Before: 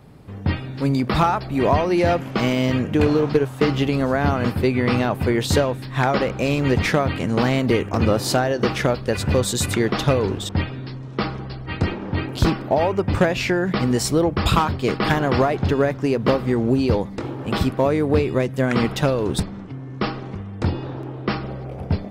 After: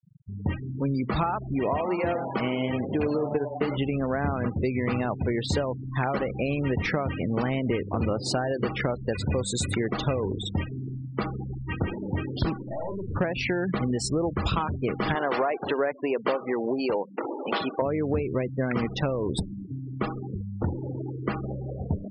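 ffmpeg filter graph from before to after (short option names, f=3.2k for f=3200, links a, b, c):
-filter_complex "[0:a]asettb=1/sr,asplit=3[a][b][c];[a]atrim=end=1.594[d];[b]atrim=start=1.59:end=3.77,asetpts=PTS-STARTPTS,afade=t=in:d=0.004:c=qsin,afade=t=out:st=2.176:d=0.004:c=qsin,lowshelf=f=120:g=-8.5,bandreject=f=174.3:t=h:w=4,bandreject=f=348.6:t=h:w=4,bandreject=f=522.9:t=h:w=4,bandreject=f=697.2:t=h:w=4,bandreject=f=871.5:t=h:w=4,bandreject=f=1.0458k:t=h:w=4,bandreject=f=1.2201k:t=h:w=4,bandreject=f=1.3944k:t=h:w=4,bandreject=f=1.5687k:t=h:w=4,bandreject=f=1.743k:t=h:w=4,bandreject=f=1.9173k:t=h:w=4,bandreject=f=2.0916k:t=h:w=4,asplit=7[e][f][g][h][i][j][k];[f]adelay=100,afreqshift=140,volume=-11.5dB[l];[g]adelay=200,afreqshift=280,volume=-16.7dB[m];[h]adelay=300,afreqshift=420,volume=-21.9dB[n];[i]adelay=400,afreqshift=560,volume=-27.1dB[o];[j]adelay=500,afreqshift=700,volume=-32.3dB[p];[k]adelay=600,afreqshift=840,volume=-37.5dB[q];[e][l][m][n][o][p][q]amix=inputs=7:normalize=0,atrim=end_sample=96138[r];[c]atrim=start=3.766[s];[d][r]acrossfade=d=0.004:c1=hsin:c2=qsin[t];[t][s]acrossfade=d=0.004:c1=qsin:c2=hsin,asettb=1/sr,asplit=3[u][v][w];[u]atrim=end=12.624[x];[v]atrim=start=12.62:end=13.16,asetpts=PTS-STARTPTS,afade=t=in:d=0.004:c=qsin,afade=t=out:st=0.536:d=0.004:c=qsin,lowpass=f=4.3k:w=0.5412,lowpass=f=4.3k:w=1.3066,aeval=exprs='(tanh(31.6*val(0)+0.35)-tanh(0.35))/31.6':c=same,asplit=2[y][z];[z]adelay=47,volume=-4.5dB[aa];[y][aa]amix=inputs=2:normalize=0,atrim=end_sample=23814[ab];[w]atrim=start=13.156[ac];[x][ab]acrossfade=d=0.004:c1=hsin:c2=qsin[ad];[ad][ac]acrossfade=d=0.004:c1=qsin:c2=hsin,asettb=1/sr,asplit=3[ae][af][ag];[ae]atrim=end=15.154[ah];[af]atrim=start=15.15:end=17.82,asetpts=PTS-STARTPTS,afade=t=in:d=0.004:c=qsin,afade=t=out:st=2.666:d=0.004:c=qsin,acontrast=41,highpass=440,lowpass=5k[ai];[ag]atrim=start=17.816[aj];[ah][ai]acrossfade=d=0.004:c1=hsin:c2=qsin[ak];[ak][aj]acrossfade=d=0.004:c1=qsin:c2=hsin,afftfilt=real='re*gte(hypot(re,im),0.0631)':imag='im*gte(hypot(re,im),0.0631)':win_size=1024:overlap=0.75,acompressor=threshold=-24dB:ratio=2.5,volume=-1.5dB"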